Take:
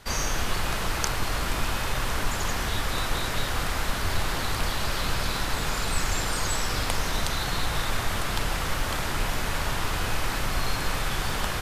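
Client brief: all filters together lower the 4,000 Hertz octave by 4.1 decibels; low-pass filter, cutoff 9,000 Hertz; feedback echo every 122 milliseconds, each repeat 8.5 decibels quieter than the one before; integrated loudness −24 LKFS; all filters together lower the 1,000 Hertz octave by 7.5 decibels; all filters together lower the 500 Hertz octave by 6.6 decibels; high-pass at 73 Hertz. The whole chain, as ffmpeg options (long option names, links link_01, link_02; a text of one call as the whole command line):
ffmpeg -i in.wav -af "highpass=73,lowpass=9000,equalizer=frequency=500:width_type=o:gain=-6,equalizer=frequency=1000:width_type=o:gain=-8,equalizer=frequency=4000:width_type=o:gain=-4.5,aecho=1:1:122|244|366|488:0.376|0.143|0.0543|0.0206,volume=7.5dB" out.wav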